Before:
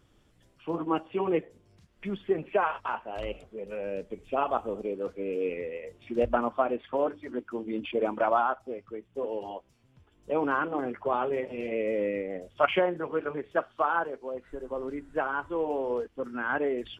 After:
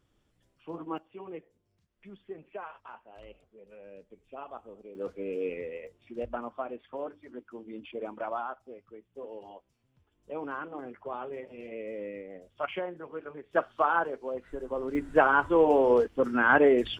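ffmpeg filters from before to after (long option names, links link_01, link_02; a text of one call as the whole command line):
ffmpeg -i in.wav -af "asetnsamples=nb_out_samples=441:pad=0,asendcmd='0.98 volume volume -15dB;4.95 volume volume -2.5dB;5.87 volume volume -9.5dB;13.53 volume volume 1dB;14.95 volume volume 8dB',volume=-8dB" out.wav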